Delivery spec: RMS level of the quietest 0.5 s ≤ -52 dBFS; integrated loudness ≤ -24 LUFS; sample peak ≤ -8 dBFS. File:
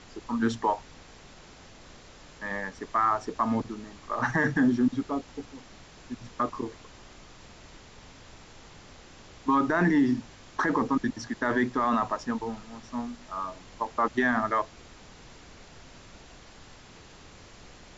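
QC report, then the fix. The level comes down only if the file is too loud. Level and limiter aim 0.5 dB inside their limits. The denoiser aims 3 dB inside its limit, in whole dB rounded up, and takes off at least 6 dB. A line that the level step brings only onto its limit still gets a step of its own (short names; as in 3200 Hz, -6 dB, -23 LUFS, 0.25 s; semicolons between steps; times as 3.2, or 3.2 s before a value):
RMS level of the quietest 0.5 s -50 dBFS: fail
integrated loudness -28.5 LUFS: OK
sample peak -13.5 dBFS: OK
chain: denoiser 6 dB, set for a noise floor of -50 dBFS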